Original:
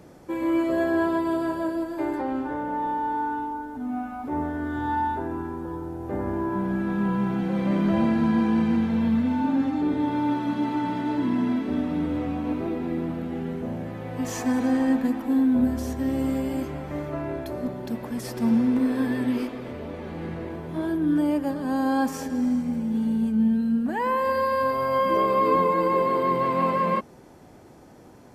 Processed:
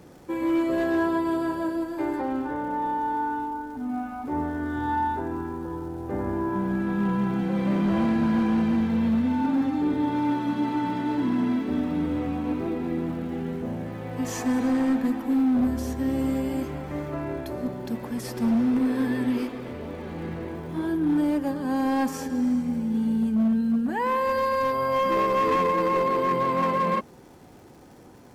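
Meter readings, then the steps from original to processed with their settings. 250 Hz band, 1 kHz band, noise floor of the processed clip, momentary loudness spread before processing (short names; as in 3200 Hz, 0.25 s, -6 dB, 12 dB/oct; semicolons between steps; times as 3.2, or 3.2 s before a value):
-0.5 dB, -0.5 dB, -48 dBFS, 10 LU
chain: notch 630 Hz, Q 12; overloaded stage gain 18.5 dB; crackle 360/s -49 dBFS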